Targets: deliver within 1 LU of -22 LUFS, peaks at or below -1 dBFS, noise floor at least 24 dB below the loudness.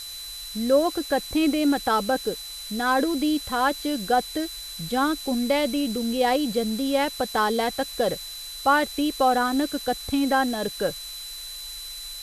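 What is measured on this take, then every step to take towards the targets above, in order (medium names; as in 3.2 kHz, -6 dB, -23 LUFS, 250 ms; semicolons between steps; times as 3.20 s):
steady tone 4 kHz; tone level -36 dBFS; noise floor -37 dBFS; noise floor target -49 dBFS; loudness -24.5 LUFS; peak level -7.5 dBFS; loudness target -22.0 LUFS
-> band-stop 4 kHz, Q 30; noise reduction 12 dB, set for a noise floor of -37 dBFS; trim +2.5 dB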